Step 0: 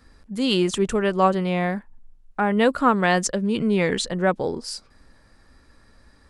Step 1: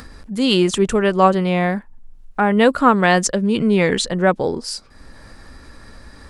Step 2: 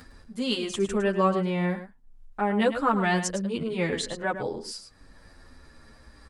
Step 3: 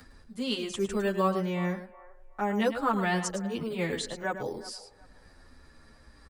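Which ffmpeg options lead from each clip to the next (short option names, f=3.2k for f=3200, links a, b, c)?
-af "acompressor=mode=upward:threshold=-35dB:ratio=2.5,volume=5dB"
-filter_complex "[0:a]aecho=1:1:107:0.299,asplit=2[a][b];[b]adelay=8.7,afreqshift=-0.56[c];[a][c]amix=inputs=2:normalize=1,volume=-7.5dB"
-filter_complex "[0:a]acrossover=split=340|420|1700[a][b][c][d];[b]acrusher=samples=9:mix=1:aa=0.000001:lfo=1:lforange=5.4:lforate=1.1[e];[c]aecho=1:1:369|738|1107:0.2|0.0499|0.0125[f];[a][e][f][d]amix=inputs=4:normalize=0,volume=-3.5dB"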